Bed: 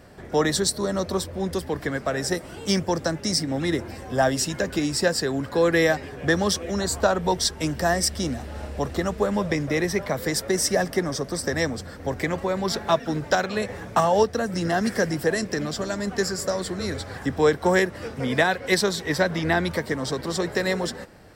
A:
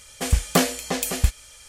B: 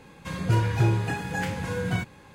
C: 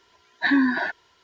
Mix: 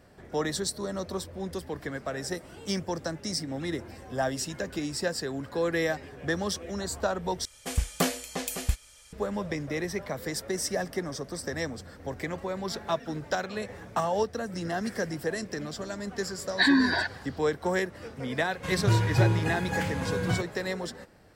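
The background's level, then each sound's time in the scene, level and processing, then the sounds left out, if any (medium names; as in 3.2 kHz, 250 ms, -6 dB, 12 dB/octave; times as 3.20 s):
bed -8 dB
7.45 s: replace with A -7.5 dB
16.16 s: add C -2.5 dB + peaking EQ 4.6 kHz +14.5 dB 0.62 oct
18.38 s: add B -1 dB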